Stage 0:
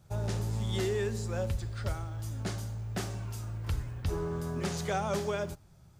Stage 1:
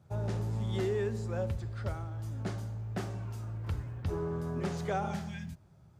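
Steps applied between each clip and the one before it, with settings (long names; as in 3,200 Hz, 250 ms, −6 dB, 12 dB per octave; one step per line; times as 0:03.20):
high-shelf EQ 2,700 Hz −11.5 dB
healed spectral selection 0:05.06–0:05.57, 260–1,500 Hz both
high-pass filter 70 Hz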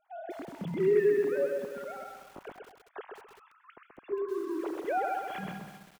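three sine waves on the formant tracks
repeating echo 130 ms, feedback 25%, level −4 dB
feedback echo at a low word length 195 ms, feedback 55%, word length 8 bits, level −9 dB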